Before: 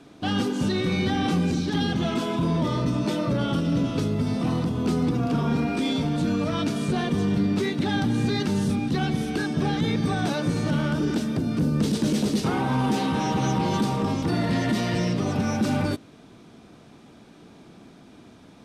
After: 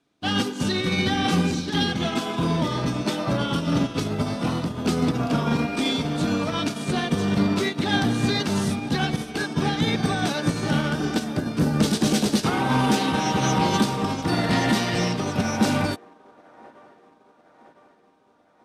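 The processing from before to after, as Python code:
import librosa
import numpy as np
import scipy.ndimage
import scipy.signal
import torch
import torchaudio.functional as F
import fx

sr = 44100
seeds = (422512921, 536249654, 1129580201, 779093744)

y = fx.tilt_shelf(x, sr, db=-3.5, hz=970.0)
y = fx.echo_wet_bandpass(y, sr, ms=1006, feedback_pct=77, hz=740.0, wet_db=-8.5)
y = fx.upward_expand(y, sr, threshold_db=-41.0, expansion=2.5)
y = y * 10.0 ** (8.0 / 20.0)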